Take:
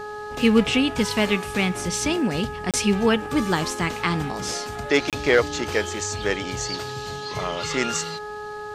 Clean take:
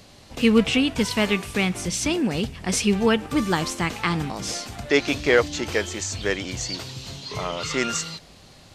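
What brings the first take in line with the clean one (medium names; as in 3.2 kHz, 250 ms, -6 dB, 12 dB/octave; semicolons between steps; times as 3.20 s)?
clip repair -7 dBFS; de-hum 420.3 Hz, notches 4; interpolate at 2.71/5.10 s, 27 ms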